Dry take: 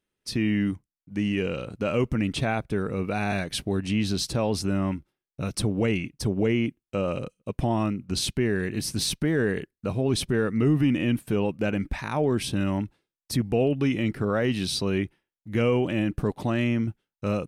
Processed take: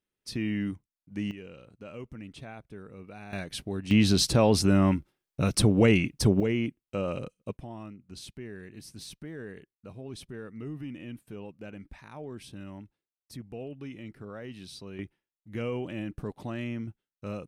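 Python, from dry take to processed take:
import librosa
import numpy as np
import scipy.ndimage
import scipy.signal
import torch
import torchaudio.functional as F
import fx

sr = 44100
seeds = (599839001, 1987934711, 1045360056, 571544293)

y = fx.gain(x, sr, db=fx.steps((0.0, -6.0), (1.31, -17.5), (3.33, -7.0), (3.91, 4.0), (6.4, -4.0), (7.57, -17.0), (14.99, -10.0)))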